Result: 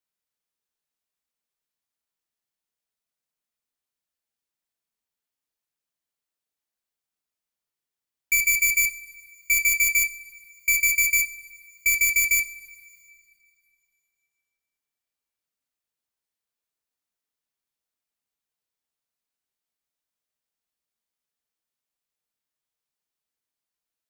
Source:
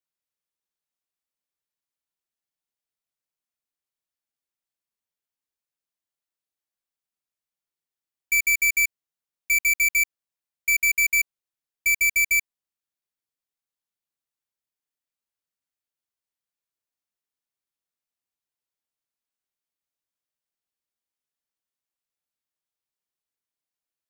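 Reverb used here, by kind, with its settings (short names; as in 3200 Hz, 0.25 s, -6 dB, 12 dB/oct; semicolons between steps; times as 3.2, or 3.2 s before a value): two-slope reverb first 0.34 s, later 2.6 s, from -18 dB, DRR 9 dB; gain +1.5 dB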